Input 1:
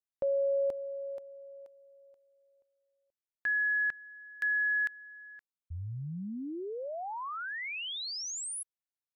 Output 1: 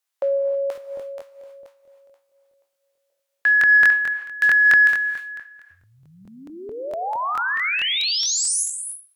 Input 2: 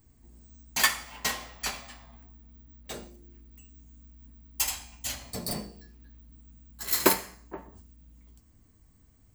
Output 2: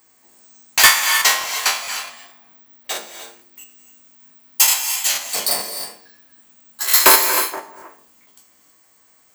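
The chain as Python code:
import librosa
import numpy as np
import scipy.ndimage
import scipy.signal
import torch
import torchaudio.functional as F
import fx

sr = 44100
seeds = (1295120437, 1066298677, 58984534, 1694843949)

y = fx.spec_trails(x, sr, decay_s=0.33)
y = scipy.signal.sosfilt(scipy.signal.butter(2, 710.0, 'highpass', fs=sr, output='sos'), y)
y = fx.rev_gated(y, sr, seeds[0], gate_ms=340, shape='rising', drr_db=7.5)
y = fx.fold_sine(y, sr, drive_db=7, ceiling_db=-6.0)
y = fx.buffer_crackle(y, sr, first_s=0.73, period_s=0.22, block=1024, kind='repeat')
y = y * librosa.db_to_amplitude(3.0)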